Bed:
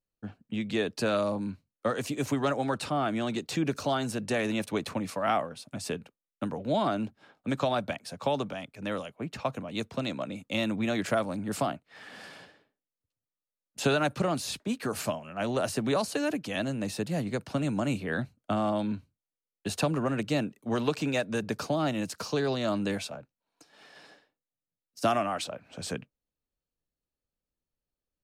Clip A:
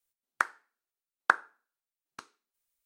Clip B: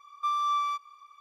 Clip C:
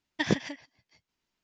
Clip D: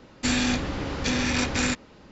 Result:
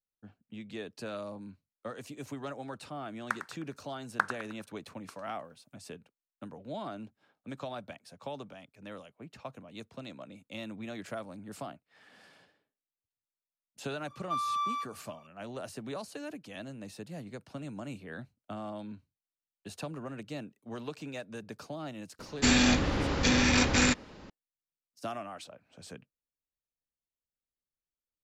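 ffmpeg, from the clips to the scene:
ffmpeg -i bed.wav -i cue0.wav -i cue1.wav -i cue2.wav -i cue3.wav -filter_complex "[0:a]volume=-12dB[link_01];[1:a]aecho=1:1:103|206|309|412|515:0.299|0.131|0.0578|0.0254|0.0112[link_02];[4:a]acontrast=36[link_03];[link_02]atrim=end=2.85,asetpts=PTS-STARTPTS,volume=-5.5dB,afade=type=in:duration=0.004:curve=hsin,afade=type=out:start_time=2.846:duration=0.004:curve=hsin,adelay=2900[link_04];[2:a]atrim=end=1.2,asetpts=PTS-STARTPTS,volume=-4.5dB,afade=type=in:duration=0.004:curve=hsin,afade=type=out:start_time=1.196:duration=0.004:curve=hsin,adelay=14070[link_05];[link_03]atrim=end=2.11,asetpts=PTS-STARTPTS,volume=-5dB,afade=type=in:duration=0.004:curve=hsin,afade=type=out:start_time=2.106:duration=0.004:curve=hsin,adelay=22190[link_06];[link_01][link_04][link_05][link_06]amix=inputs=4:normalize=0" out.wav

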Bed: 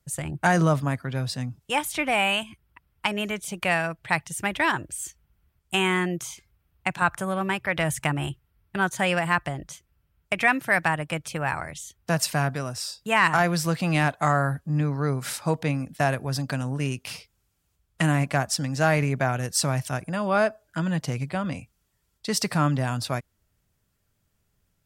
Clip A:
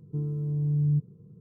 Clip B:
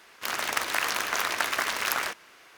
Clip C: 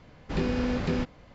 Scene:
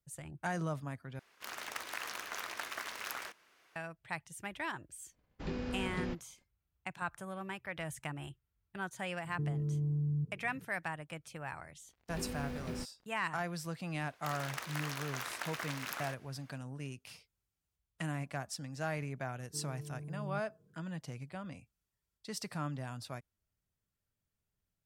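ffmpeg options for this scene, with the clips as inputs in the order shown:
ffmpeg -i bed.wav -i cue0.wav -i cue1.wav -i cue2.wav -filter_complex "[2:a]asplit=2[link_01][link_02];[3:a]asplit=2[link_03][link_04];[1:a]asplit=2[link_05][link_06];[0:a]volume=-16dB[link_07];[link_03]agate=range=-33dB:threshold=-43dB:ratio=3:release=100:detection=peak[link_08];[link_05]alimiter=level_in=3dB:limit=-24dB:level=0:latency=1:release=71,volume=-3dB[link_09];[link_04]acrusher=bits=6:mix=0:aa=0.5[link_10];[link_06]highpass=frequency=700:poles=1[link_11];[link_07]asplit=2[link_12][link_13];[link_12]atrim=end=1.194[link_14];[link_01]atrim=end=2.57,asetpts=PTS-STARTPTS,volume=-14dB[link_15];[link_13]atrim=start=3.756[link_16];[link_08]atrim=end=1.34,asetpts=PTS-STARTPTS,volume=-11dB,afade=type=in:duration=0.004:curve=hsin,afade=type=out:start_time=1.336:duration=0.004:curve=hsin,adelay=5100[link_17];[link_09]atrim=end=1.4,asetpts=PTS-STARTPTS,volume=-2.5dB,afade=type=in:duration=0.004:curve=hsin,afade=type=out:start_time=1.396:duration=0.004:curve=hsin,adelay=9250[link_18];[link_10]atrim=end=1.34,asetpts=PTS-STARTPTS,volume=-13.5dB,afade=type=in:duration=0.1,afade=type=out:start_time=1.24:duration=0.1,adelay=11800[link_19];[link_02]atrim=end=2.57,asetpts=PTS-STARTPTS,volume=-14dB,afade=type=in:duration=0.004:curve=hsin,afade=type=out:start_time=2.566:duration=0.004:curve=hsin,adelay=14010[link_20];[link_11]atrim=end=1.4,asetpts=PTS-STARTPTS,volume=-4.5dB,afade=type=in:duration=0.004:curve=hsin,afade=type=out:start_time=1.396:duration=0.004:curve=hsin,adelay=855540S[link_21];[link_14][link_15]acrossfade=duration=0.004:curve1=hsin:curve2=hsin[link_22];[link_22][link_16]acrossfade=duration=0.004:curve1=hsin:curve2=hsin[link_23];[link_23][link_17][link_18][link_19][link_20][link_21]amix=inputs=6:normalize=0" out.wav

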